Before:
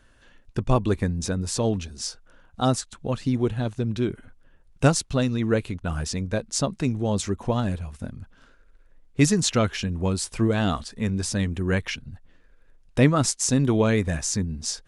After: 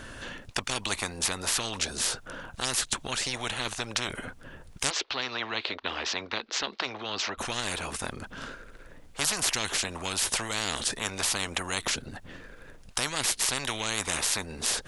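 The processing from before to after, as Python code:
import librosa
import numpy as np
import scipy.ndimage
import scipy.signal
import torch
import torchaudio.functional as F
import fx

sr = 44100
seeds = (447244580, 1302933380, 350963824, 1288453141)

y = fx.ellip_bandpass(x, sr, low_hz=390.0, high_hz=4200.0, order=3, stop_db=40, at=(4.89, 7.37), fade=0.02)
y = fx.dynamic_eq(y, sr, hz=1200.0, q=0.76, threshold_db=-37.0, ratio=4.0, max_db=-4)
y = fx.spectral_comp(y, sr, ratio=10.0)
y = F.gain(torch.from_numpy(y), -1.0).numpy()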